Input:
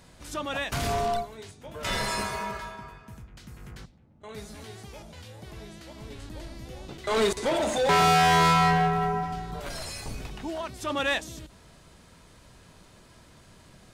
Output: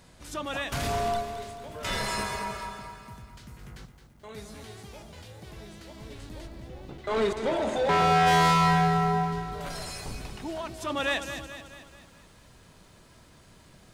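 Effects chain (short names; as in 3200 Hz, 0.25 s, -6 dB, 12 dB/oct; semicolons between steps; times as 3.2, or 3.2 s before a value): 6.46–8.26 LPF 1600 Hz -> 2900 Hz 6 dB/oct; lo-fi delay 0.217 s, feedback 55%, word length 10-bit, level -10 dB; gain -1.5 dB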